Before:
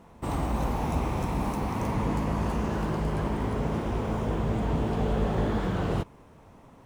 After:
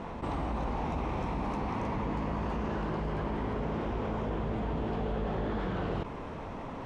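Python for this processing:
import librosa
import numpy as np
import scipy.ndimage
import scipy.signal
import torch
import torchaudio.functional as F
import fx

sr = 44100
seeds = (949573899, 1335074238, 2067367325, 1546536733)

y = scipy.signal.sosfilt(scipy.signal.butter(2, 3900.0, 'lowpass', fs=sr, output='sos'), x)
y = fx.peak_eq(y, sr, hz=110.0, db=-4.5, octaves=1.7)
y = fx.env_flatten(y, sr, amount_pct=70)
y = y * librosa.db_to_amplitude(-6.5)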